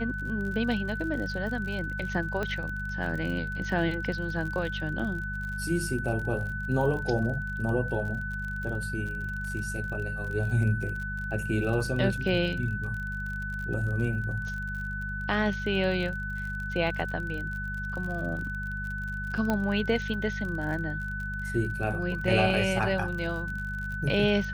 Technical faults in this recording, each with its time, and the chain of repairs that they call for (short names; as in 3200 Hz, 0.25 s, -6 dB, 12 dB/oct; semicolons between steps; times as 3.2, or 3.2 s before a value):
crackle 41/s -35 dBFS
hum 50 Hz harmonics 4 -36 dBFS
tone 1500 Hz -34 dBFS
2.43 pop -18 dBFS
19.5 pop -15 dBFS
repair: de-click; de-hum 50 Hz, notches 4; notch 1500 Hz, Q 30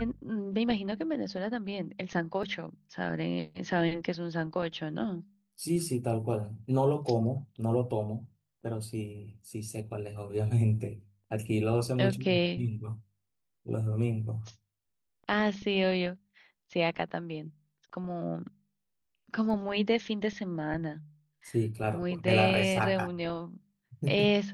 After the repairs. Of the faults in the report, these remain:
2.43 pop
19.5 pop